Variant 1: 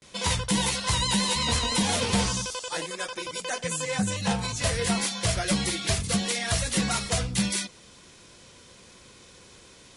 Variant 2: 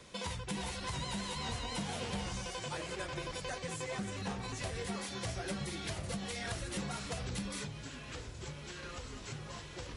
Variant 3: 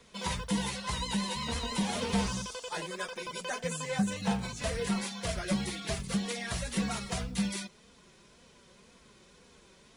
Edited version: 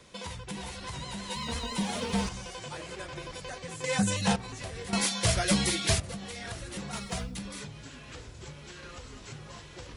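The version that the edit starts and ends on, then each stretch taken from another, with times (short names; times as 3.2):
2
1.3–2.29 from 3
3.84–4.36 from 1
4.93–6 from 1
6.93–7.37 from 3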